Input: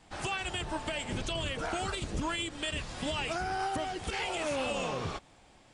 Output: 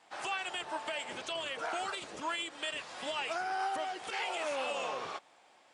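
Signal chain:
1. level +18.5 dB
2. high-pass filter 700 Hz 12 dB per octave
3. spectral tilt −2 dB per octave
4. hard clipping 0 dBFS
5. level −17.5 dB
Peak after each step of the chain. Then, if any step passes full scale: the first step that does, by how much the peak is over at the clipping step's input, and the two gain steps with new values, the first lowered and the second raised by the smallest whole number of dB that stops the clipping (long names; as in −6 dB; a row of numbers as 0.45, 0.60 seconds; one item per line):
−4.0, −4.5, −5.5, −5.5, −23.0 dBFS
no step passes full scale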